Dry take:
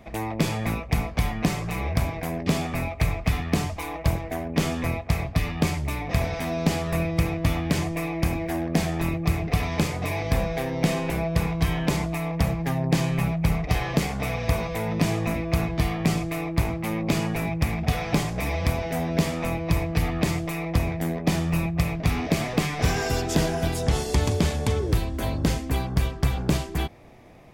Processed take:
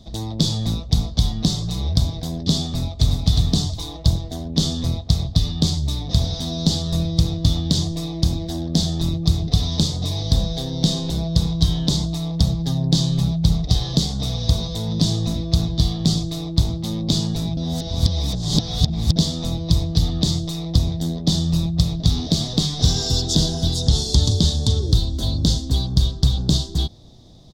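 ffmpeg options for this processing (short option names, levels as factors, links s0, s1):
-filter_complex "[0:a]asplit=2[s0][s1];[s1]afade=t=in:st=2.63:d=0.01,afade=t=out:st=3.21:d=0.01,aecho=0:1:360|720|1080:0.707946|0.141589|0.0283178[s2];[s0][s2]amix=inputs=2:normalize=0,asplit=3[s3][s4][s5];[s3]atrim=end=17.572[s6];[s4]atrim=start=17.568:end=19.162,asetpts=PTS-STARTPTS,areverse[s7];[s5]atrim=start=19.158[s8];[s6][s7]acrossfade=d=0.004:c1=hsin:c2=hsin[s9];[s9][s8]acrossfade=d=0.004:c1=hsin:c2=hsin,firequalizer=gain_entry='entry(110,0);entry(420,-10);entry(2400,-26);entry(3600,10);entry(11000,-11)':delay=0.05:min_phase=1,volume=2.11"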